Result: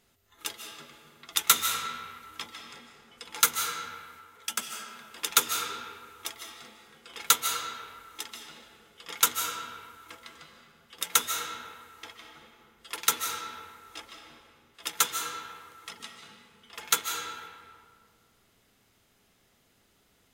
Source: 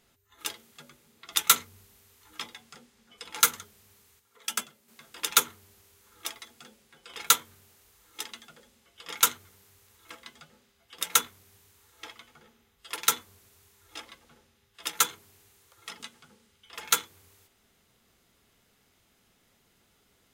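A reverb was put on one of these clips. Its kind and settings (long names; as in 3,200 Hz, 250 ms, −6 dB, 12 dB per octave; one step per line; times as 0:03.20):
comb and all-pass reverb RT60 2 s, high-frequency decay 0.6×, pre-delay 110 ms, DRR 3 dB
level −1 dB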